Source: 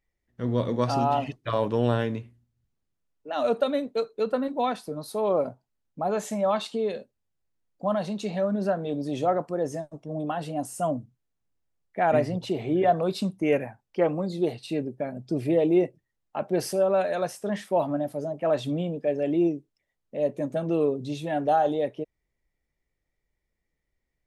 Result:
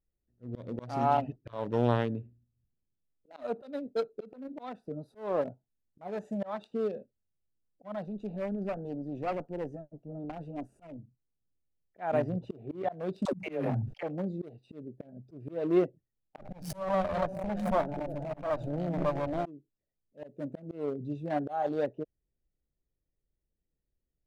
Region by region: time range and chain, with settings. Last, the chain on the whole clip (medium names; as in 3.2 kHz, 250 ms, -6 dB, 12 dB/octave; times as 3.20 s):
8.04–10.99 s: valve stage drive 24 dB, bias 0.6 + loudspeaker Doppler distortion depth 0.17 ms
13.25–14.03 s: phase dispersion lows, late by 103 ms, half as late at 380 Hz + level flattener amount 70%
16.38–19.46 s: comb filter that takes the minimum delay 1.3 ms + repeats whose band climbs or falls 107 ms, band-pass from 150 Hz, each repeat 0.7 oct, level -4.5 dB + swell ahead of each attack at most 37 dB/s
whole clip: local Wiener filter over 41 samples; slow attack 301 ms; dynamic bell 950 Hz, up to +4 dB, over -40 dBFS, Q 1.1; trim -3 dB